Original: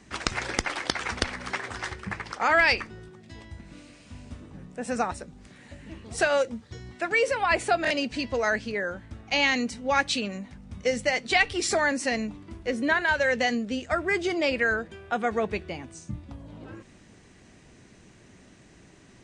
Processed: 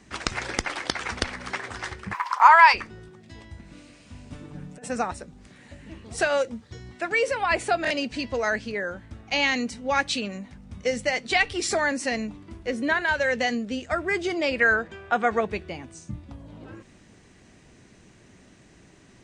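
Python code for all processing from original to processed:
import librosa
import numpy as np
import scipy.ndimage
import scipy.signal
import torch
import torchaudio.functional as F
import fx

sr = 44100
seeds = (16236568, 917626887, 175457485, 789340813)

y = fx.highpass_res(x, sr, hz=1000.0, q=12.0, at=(2.13, 2.73), fade=0.02)
y = fx.dmg_crackle(y, sr, seeds[0], per_s=230.0, level_db=-44.0, at=(2.13, 2.73), fade=0.02)
y = fx.chain(y, sr, fx.comb(ms=6.8, depth=0.83),
    fx.over_compress(threshold_db=-37.0, ratio=-0.5), at=(4.32, 4.9))
y = fx.chain(y, sr, fx.brickwall_lowpass(high_hz=8900.0),
    fx.peak_eq(hz=1200.0, db=6.0, octaves=2.3), at=(14.6, 15.41))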